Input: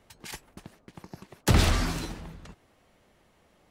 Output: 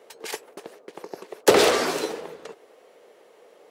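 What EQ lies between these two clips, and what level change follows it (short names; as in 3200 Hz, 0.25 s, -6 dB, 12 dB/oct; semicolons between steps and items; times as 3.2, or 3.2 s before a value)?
resonant high-pass 450 Hz, resonance Q 4.9; +6.0 dB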